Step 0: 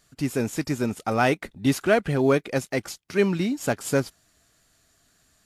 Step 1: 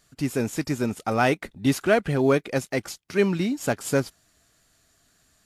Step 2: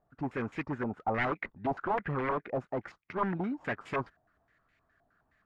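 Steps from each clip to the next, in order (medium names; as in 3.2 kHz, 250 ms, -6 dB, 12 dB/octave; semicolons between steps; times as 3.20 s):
no audible change
wavefolder -19.5 dBFS; step-sequenced low-pass 9.6 Hz 780–2200 Hz; trim -8.5 dB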